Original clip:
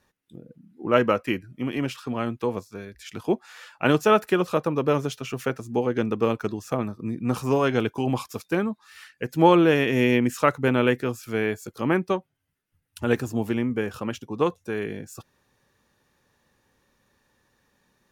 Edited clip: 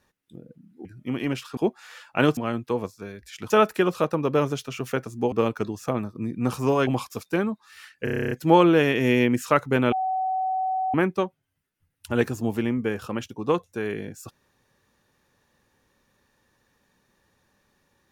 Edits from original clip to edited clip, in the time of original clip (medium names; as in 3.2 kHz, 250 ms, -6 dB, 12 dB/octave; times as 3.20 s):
0.85–1.38 s: delete
3.23–4.03 s: move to 2.10 s
5.85–6.16 s: delete
7.71–8.06 s: delete
9.23 s: stutter 0.03 s, 10 plays
10.84–11.86 s: bleep 754 Hz -22.5 dBFS